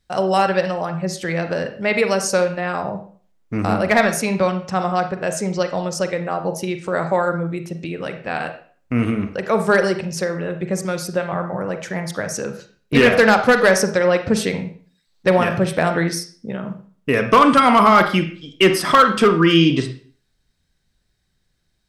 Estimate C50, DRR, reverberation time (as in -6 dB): 9.5 dB, 7.0 dB, 0.45 s